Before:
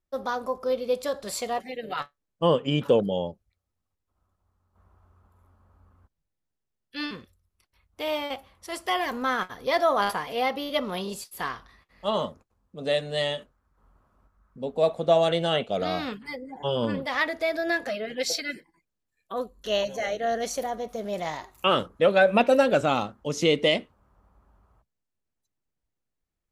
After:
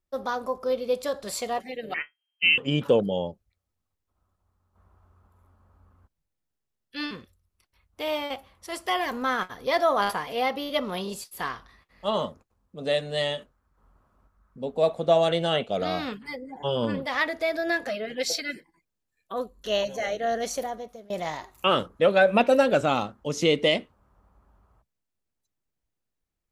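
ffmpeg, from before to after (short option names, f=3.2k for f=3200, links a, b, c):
-filter_complex "[0:a]asettb=1/sr,asplit=3[a][b][c];[a]atrim=end=1.944[d];[b]atrim=start=1.94:end=2.58,asetpts=PTS-STARTPTS,afade=t=in:d=0.004:c=qsin,afade=t=out:st=0.636:d=0.004:c=qsin,lowpass=f=2.7k:t=q:w=0.5098,lowpass=f=2.7k:t=q:w=0.6013,lowpass=f=2.7k:t=q:w=0.9,lowpass=f=2.7k:t=q:w=2.563,afreqshift=-3200[e];[c]atrim=start=2.576[f];[d][e]acrossfade=d=0.004:c1=hsin:c2=qsin[g];[g][f]acrossfade=d=0.004:c1=qsin:c2=hsin,asplit=2[h][i];[h]atrim=end=21.1,asetpts=PTS-STARTPTS,afade=t=out:st=20.58:d=0.52:silence=0.0630957[j];[i]atrim=start=21.1,asetpts=PTS-STARTPTS,afade=t=in:d=0.004:c=hsin:silence=0.0630957[k];[j][k]concat=n=2:v=0:a=1"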